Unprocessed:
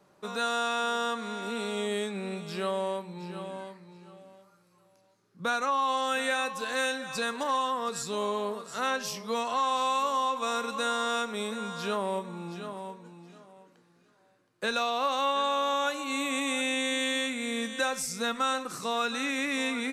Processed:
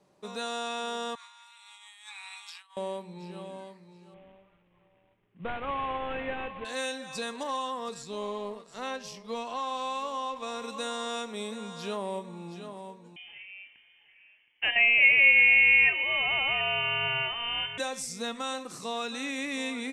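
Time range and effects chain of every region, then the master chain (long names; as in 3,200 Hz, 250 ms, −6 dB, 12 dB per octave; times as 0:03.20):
0:01.15–0:02.77: Butterworth high-pass 860 Hz 72 dB per octave + compressor whose output falls as the input rises −44 dBFS, ratio −0.5
0:04.14–0:06.65: variable-slope delta modulation 16 kbit/s + low-shelf EQ 74 Hz +11.5 dB
0:07.94–0:10.62: mu-law and A-law mismatch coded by A + high-shelf EQ 6,900 Hz −9.5 dB
0:13.16–0:17.78: parametric band 940 Hz +15 dB 1.6 octaves + voice inversion scrambler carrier 3,300 Hz
whole clip: low-pass filter 11,000 Hz 24 dB per octave; parametric band 1,400 Hz −8 dB 0.57 octaves; level −2.5 dB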